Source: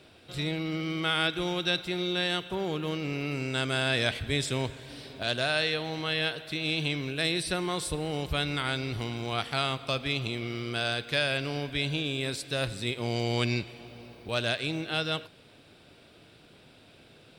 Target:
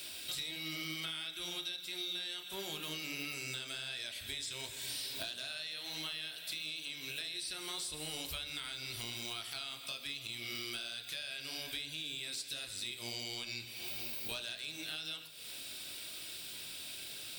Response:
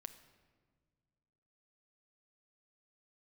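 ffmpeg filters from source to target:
-filter_complex "[0:a]aemphasis=mode=production:type=75fm,acrossover=split=6200[s0][s1];[s1]acompressor=threshold=0.00891:ratio=4:attack=1:release=60[s2];[s0][s2]amix=inputs=2:normalize=0,tiltshelf=f=1400:g=-6.5,asplit=2[s3][s4];[s4]alimiter=limit=0.178:level=0:latency=1,volume=0.794[s5];[s3][s5]amix=inputs=2:normalize=0,acompressor=threshold=0.0178:ratio=16,acrossover=split=1700[s6][s7];[s6]flanger=delay=19.5:depth=6.8:speed=1.5[s8];[s7]asoftclip=type=tanh:threshold=0.0316[s9];[s8][s9]amix=inputs=2:normalize=0[s10];[1:a]atrim=start_sample=2205,asetrate=88200,aresample=44100[s11];[s10][s11]afir=irnorm=-1:irlink=0,volume=3.35"

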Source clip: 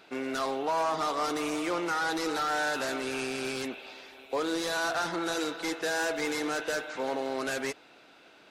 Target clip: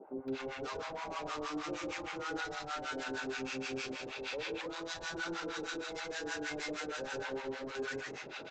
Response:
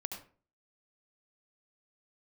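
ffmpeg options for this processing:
-filter_complex "[1:a]atrim=start_sample=2205,asetrate=25137,aresample=44100[s0];[0:a][s0]afir=irnorm=-1:irlink=0,acompressor=threshold=0.0126:ratio=6,equalizer=f=750:w=5.6:g=8,aresample=16000,asoftclip=type=tanh:threshold=0.01,aresample=44100,alimiter=level_in=9.44:limit=0.0631:level=0:latency=1,volume=0.106,asuperstop=centerf=700:order=4:qfactor=6.8,acrossover=split=240|790[s1][s2][s3];[s1]adelay=60[s4];[s3]adelay=280[s5];[s4][s2][s5]amix=inputs=3:normalize=0,acrossover=split=740[s6][s7];[s6]aeval=exprs='val(0)*(1-1/2+1/2*cos(2*PI*6.4*n/s))':c=same[s8];[s7]aeval=exprs='val(0)*(1-1/2-1/2*cos(2*PI*6.4*n/s))':c=same[s9];[s8][s9]amix=inputs=2:normalize=0,volume=5.01"

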